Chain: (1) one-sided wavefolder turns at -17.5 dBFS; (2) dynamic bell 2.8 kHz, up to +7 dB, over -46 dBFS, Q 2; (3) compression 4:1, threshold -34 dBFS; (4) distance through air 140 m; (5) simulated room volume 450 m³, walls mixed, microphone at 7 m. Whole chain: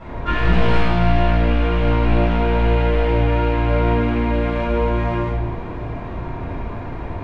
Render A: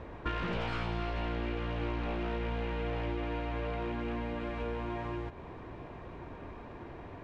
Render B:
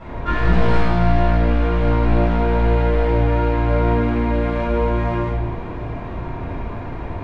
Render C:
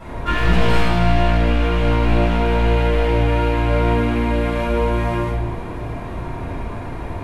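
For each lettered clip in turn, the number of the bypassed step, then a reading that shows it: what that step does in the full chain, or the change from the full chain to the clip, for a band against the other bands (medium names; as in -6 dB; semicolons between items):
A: 5, echo-to-direct 11.5 dB to none; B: 2, 4 kHz band -5.0 dB; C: 4, 4 kHz band +2.5 dB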